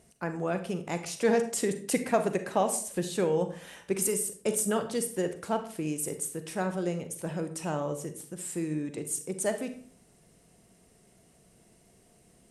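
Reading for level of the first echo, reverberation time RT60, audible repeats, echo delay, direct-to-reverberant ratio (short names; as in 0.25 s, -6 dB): none, 0.50 s, none, none, 8.5 dB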